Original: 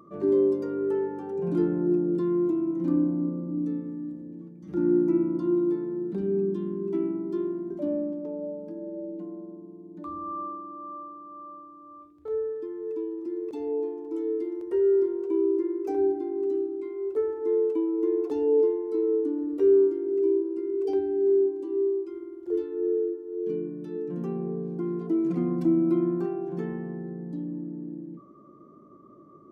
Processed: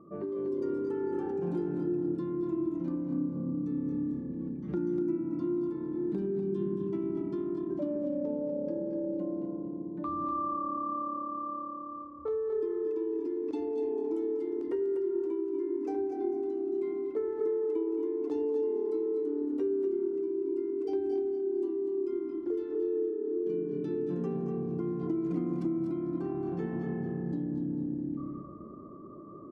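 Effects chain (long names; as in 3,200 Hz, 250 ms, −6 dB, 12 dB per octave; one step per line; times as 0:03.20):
echo with shifted repeats 223 ms, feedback 36%, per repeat −35 Hz, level −10 dB
downward compressor 6 to 1, threshold −35 dBFS, peak gain reduction 17.5 dB
on a send: single-tap delay 245 ms −8 dB
on the sum: automatic gain control gain up to 4.5 dB
low-pass that shuts in the quiet parts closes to 710 Hz, open at −27 dBFS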